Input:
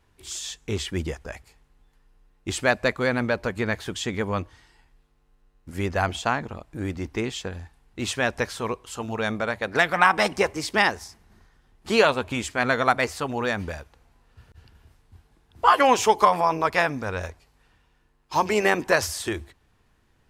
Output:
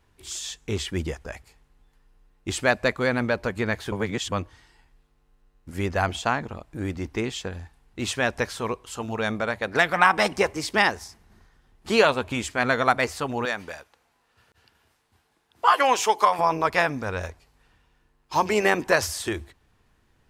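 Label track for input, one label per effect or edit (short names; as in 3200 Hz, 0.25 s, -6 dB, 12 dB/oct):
3.920000	4.320000	reverse
13.450000	16.390000	HPF 600 Hz 6 dB/oct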